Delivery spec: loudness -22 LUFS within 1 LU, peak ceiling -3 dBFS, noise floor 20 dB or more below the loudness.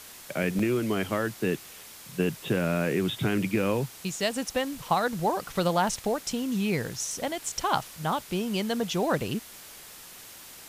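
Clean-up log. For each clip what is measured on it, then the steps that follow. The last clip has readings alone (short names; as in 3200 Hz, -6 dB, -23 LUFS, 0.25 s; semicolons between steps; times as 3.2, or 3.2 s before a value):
dropouts 1; longest dropout 4.0 ms; noise floor -47 dBFS; noise floor target -49 dBFS; loudness -28.5 LUFS; peak -8.5 dBFS; loudness target -22.0 LUFS
-> interpolate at 0.59, 4 ms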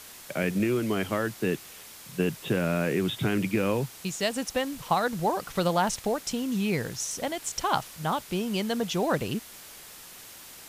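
dropouts 0; noise floor -47 dBFS; noise floor target -49 dBFS
-> denoiser 6 dB, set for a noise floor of -47 dBFS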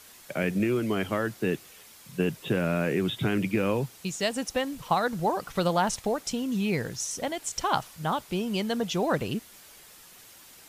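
noise floor -52 dBFS; loudness -28.5 LUFS; peak -8.5 dBFS; loudness target -22.0 LUFS
-> gain +6.5 dB; limiter -3 dBFS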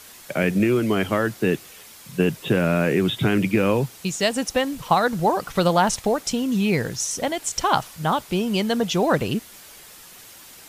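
loudness -22.0 LUFS; peak -3.0 dBFS; noise floor -45 dBFS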